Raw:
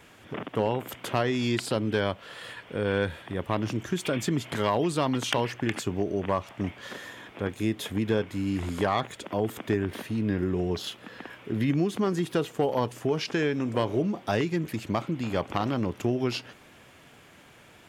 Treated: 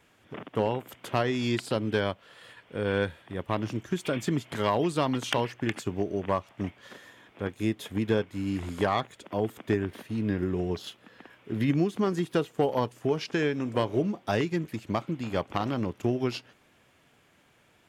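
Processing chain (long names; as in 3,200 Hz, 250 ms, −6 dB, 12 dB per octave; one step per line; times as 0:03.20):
expander for the loud parts 1.5 to 1, over −43 dBFS
level +1 dB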